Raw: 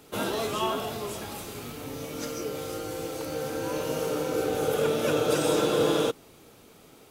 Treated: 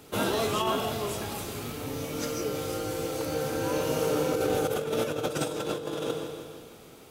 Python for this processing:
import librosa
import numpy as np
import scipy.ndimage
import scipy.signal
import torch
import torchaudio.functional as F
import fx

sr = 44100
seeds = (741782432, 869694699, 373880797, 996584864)

y = fx.peak_eq(x, sr, hz=93.0, db=3.5, octaves=1.2)
y = fx.echo_feedback(y, sr, ms=166, feedback_pct=57, wet_db=-15.0)
y = fx.over_compress(y, sr, threshold_db=-27.0, ratio=-0.5)